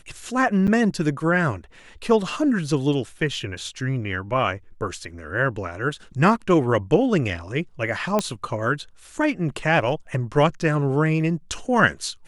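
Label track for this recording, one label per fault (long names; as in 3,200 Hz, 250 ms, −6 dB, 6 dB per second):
0.670000	0.680000	drop-out 7.6 ms
8.190000	8.190000	click −8 dBFS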